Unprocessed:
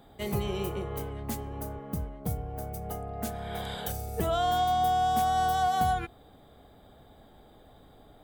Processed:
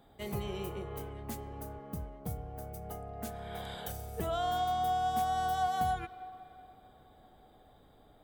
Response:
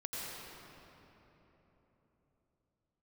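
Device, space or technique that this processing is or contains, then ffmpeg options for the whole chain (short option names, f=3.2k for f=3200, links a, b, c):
filtered reverb send: -filter_complex "[0:a]asplit=2[a][b];[b]highpass=400,lowpass=3.7k[c];[1:a]atrim=start_sample=2205[d];[c][d]afir=irnorm=-1:irlink=0,volume=-14dB[e];[a][e]amix=inputs=2:normalize=0,volume=-6.5dB"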